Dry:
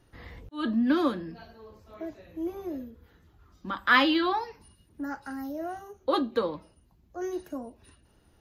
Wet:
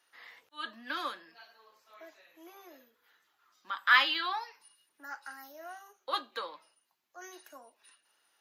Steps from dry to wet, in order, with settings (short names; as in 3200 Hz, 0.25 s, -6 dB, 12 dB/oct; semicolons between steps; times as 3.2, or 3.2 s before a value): HPF 1200 Hz 12 dB/oct